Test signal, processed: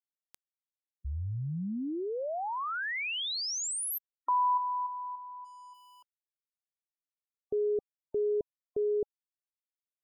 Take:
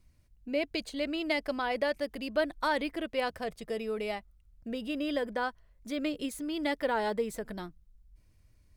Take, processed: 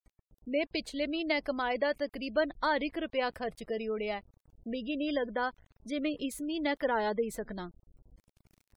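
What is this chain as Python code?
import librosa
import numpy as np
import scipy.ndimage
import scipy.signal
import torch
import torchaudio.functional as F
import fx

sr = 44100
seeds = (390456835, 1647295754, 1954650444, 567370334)

y = np.where(np.abs(x) >= 10.0 ** (-56.5 / 20.0), x, 0.0)
y = fx.spec_gate(y, sr, threshold_db=-30, keep='strong')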